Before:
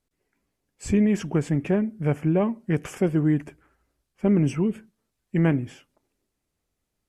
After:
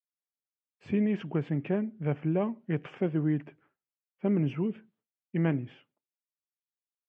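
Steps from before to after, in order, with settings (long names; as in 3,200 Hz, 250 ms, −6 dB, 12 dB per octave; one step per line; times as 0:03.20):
downward expander −54 dBFS
Chebyshev band-pass filter 120–3,300 Hz, order 3
level −6 dB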